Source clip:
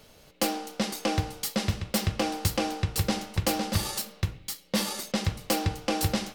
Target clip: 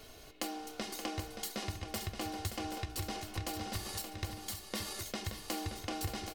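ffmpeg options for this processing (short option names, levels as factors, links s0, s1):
-filter_complex "[0:a]aecho=1:1:2.8:0.58,acompressor=threshold=0.00891:ratio=3,asplit=2[s0][s1];[s1]aecho=0:1:575|778:0.376|0.376[s2];[s0][s2]amix=inputs=2:normalize=0"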